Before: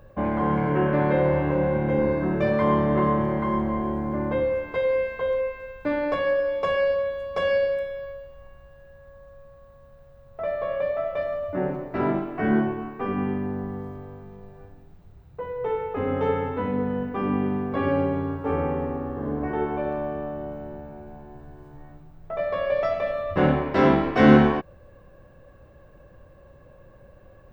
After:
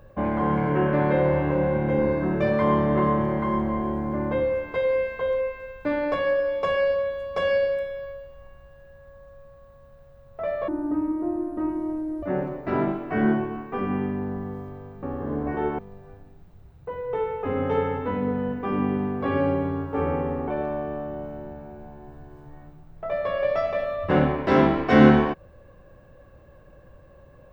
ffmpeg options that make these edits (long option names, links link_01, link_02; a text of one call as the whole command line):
ffmpeg -i in.wav -filter_complex "[0:a]asplit=6[link_01][link_02][link_03][link_04][link_05][link_06];[link_01]atrim=end=10.684[link_07];[link_02]atrim=start=10.68:end=11.5,asetpts=PTS-STARTPTS,asetrate=23373,aresample=44100,atrim=end_sample=68230,asetpts=PTS-STARTPTS[link_08];[link_03]atrim=start=11.496:end=14.302[link_09];[link_04]atrim=start=18.988:end=19.752[link_10];[link_05]atrim=start=14.298:end=18.992[link_11];[link_06]atrim=start=19.748[link_12];[link_07][link_08]acrossfade=duration=0.004:curve1=hsin:curve2=hsin[link_13];[link_13][link_09]acrossfade=duration=0.004:curve1=hsin:curve2=hsin[link_14];[link_14][link_10]acrossfade=duration=0.004:curve1=hsin:curve2=hsin[link_15];[link_15][link_11]acrossfade=duration=0.004:curve1=hsin:curve2=hsin[link_16];[link_16][link_12]acrossfade=duration=0.004:curve1=hsin:curve2=hsin" out.wav